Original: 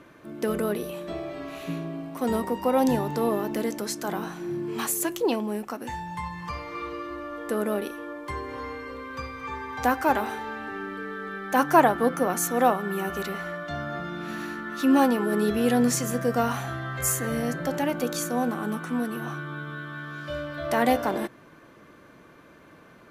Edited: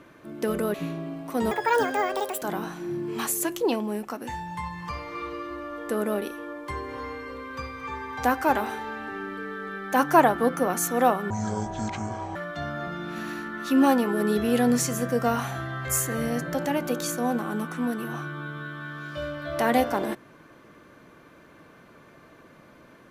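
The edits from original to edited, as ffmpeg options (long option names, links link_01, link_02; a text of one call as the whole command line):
ffmpeg -i in.wav -filter_complex "[0:a]asplit=6[link_01][link_02][link_03][link_04][link_05][link_06];[link_01]atrim=end=0.742[link_07];[link_02]atrim=start=1.608:end=2.384[link_08];[link_03]atrim=start=2.38:end=4.02,asetpts=PTS-STARTPTS,asetrate=79380,aresample=44100[link_09];[link_04]atrim=start=4.016:end=12.904[link_10];[link_05]atrim=start=12.9:end=13.48,asetpts=PTS-STARTPTS,asetrate=24255,aresample=44100,atrim=end_sample=46505,asetpts=PTS-STARTPTS[link_11];[link_06]atrim=start=13.476[link_12];[link_07][link_08]acrossfade=duration=0.004:curve1=hsin:curve2=hsin[link_13];[link_13][link_09]acrossfade=duration=0.004:curve1=hsin:curve2=hsin[link_14];[link_14][link_10]acrossfade=duration=0.004:curve1=hsin:curve2=hsin[link_15];[link_15][link_11]acrossfade=duration=0.004:curve1=hsin:curve2=hsin[link_16];[link_16][link_12]acrossfade=duration=0.004:curve1=hsin:curve2=hsin" out.wav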